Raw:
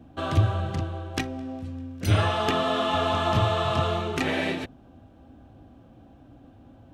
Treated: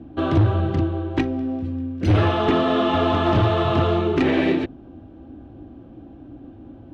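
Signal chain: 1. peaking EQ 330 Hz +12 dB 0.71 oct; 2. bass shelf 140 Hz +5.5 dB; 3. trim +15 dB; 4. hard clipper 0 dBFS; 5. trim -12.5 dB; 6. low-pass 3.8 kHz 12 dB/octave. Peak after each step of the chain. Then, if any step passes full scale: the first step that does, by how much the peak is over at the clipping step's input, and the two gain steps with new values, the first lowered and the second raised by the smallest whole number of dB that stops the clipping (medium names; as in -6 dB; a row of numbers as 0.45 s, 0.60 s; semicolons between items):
-5.5 dBFS, -5.0 dBFS, +10.0 dBFS, 0.0 dBFS, -12.5 dBFS, -12.0 dBFS; step 3, 10.0 dB; step 3 +5 dB, step 5 -2.5 dB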